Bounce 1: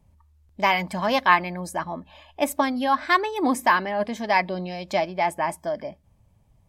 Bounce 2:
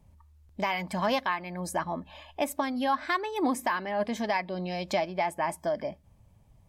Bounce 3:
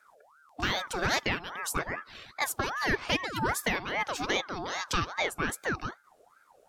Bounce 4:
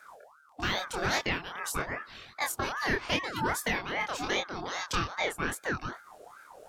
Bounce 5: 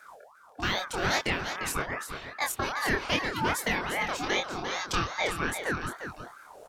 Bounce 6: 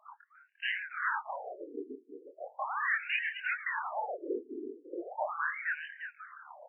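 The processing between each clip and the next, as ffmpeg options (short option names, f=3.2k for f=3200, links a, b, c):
-filter_complex "[0:a]asplit=2[a][b];[b]acompressor=threshold=-29dB:ratio=6,volume=1.5dB[c];[a][c]amix=inputs=2:normalize=0,alimiter=limit=-11.5dB:level=0:latency=1:release=401,volume=-6dB"
-af "equalizer=f=6.9k:w=0.32:g=8.5,aeval=exprs='val(0)*sin(2*PI*1000*n/s+1000*0.5/2.5*sin(2*PI*2.5*n/s))':c=same"
-af "areverse,acompressor=mode=upward:threshold=-38dB:ratio=2.5,areverse,flanger=delay=22.5:depth=5.5:speed=0.86,volume=2dB"
-af "aecho=1:1:349:0.376,volume=1.5dB"
-af "afftfilt=real='re*between(b*sr/1024,310*pow(2200/310,0.5+0.5*sin(2*PI*0.38*pts/sr))/1.41,310*pow(2200/310,0.5+0.5*sin(2*PI*0.38*pts/sr))*1.41)':imag='im*between(b*sr/1024,310*pow(2200/310,0.5+0.5*sin(2*PI*0.38*pts/sr))/1.41,310*pow(2200/310,0.5+0.5*sin(2*PI*0.38*pts/sr))*1.41)':win_size=1024:overlap=0.75"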